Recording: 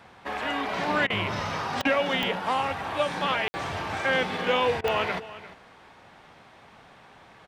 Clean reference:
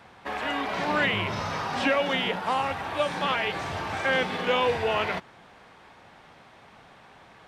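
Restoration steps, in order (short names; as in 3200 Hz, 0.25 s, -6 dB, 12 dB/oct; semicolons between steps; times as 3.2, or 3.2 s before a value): de-click; room tone fill 3.48–3.54; interpolate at 1.07/1.82/4.81, 29 ms; inverse comb 0.35 s -16 dB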